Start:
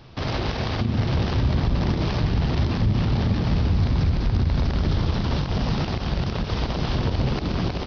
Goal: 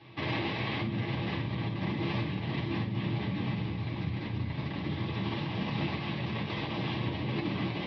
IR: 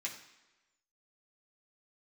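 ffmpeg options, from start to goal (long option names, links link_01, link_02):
-filter_complex "[0:a]acompressor=threshold=-22dB:ratio=6,highpass=120,equalizer=frequency=130:width_type=q:width=4:gain=3,equalizer=frequency=650:width_type=q:width=4:gain=-4,equalizer=frequency=1400:width_type=q:width=4:gain=-9,lowpass=frequency=3700:width=0.5412,lowpass=frequency=3700:width=1.3066[link_01];[1:a]atrim=start_sample=2205,atrim=end_sample=3528[link_02];[link_01][link_02]afir=irnorm=-1:irlink=0"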